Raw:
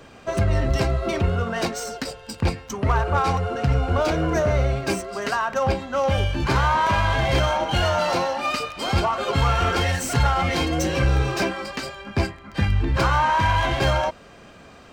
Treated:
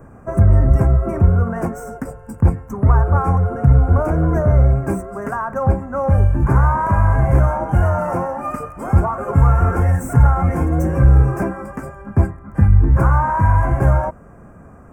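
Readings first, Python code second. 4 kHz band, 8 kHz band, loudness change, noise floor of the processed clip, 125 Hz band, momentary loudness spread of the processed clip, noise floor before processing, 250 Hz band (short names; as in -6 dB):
under -25 dB, n/a, +6.0 dB, -42 dBFS, +9.5 dB, 11 LU, -46 dBFS, +5.5 dB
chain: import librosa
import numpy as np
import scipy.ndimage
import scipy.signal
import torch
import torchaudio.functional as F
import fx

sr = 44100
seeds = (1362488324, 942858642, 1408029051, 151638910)

y = scipy.signal.sosfilt(scipy.signal.cheby1(2, 1.0, [1300.0, 9600.0], 'bandstop', fs=sr, output='sos'), x)
y = fx.bass_treble(y, sr, bass_db=10, treble_db=-2)
y = y * 10.0 ** (1.0 / 20.0)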